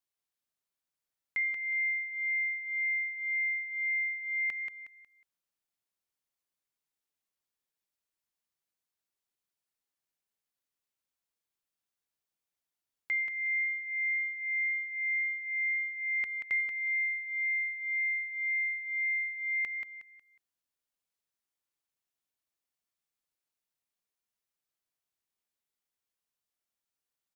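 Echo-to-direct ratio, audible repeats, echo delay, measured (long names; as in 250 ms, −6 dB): −5.5 dB, 3, 182 ms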